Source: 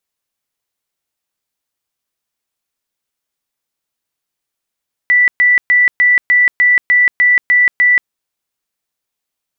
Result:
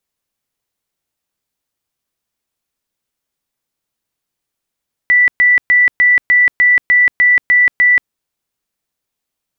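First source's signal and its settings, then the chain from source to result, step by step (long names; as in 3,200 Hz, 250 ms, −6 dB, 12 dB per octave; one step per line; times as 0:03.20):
tone bursts 1,970 Hz, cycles 353, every 0.30 s, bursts 10, −6.5 dBFS
low-shelf EQ 440 Hz +6 dB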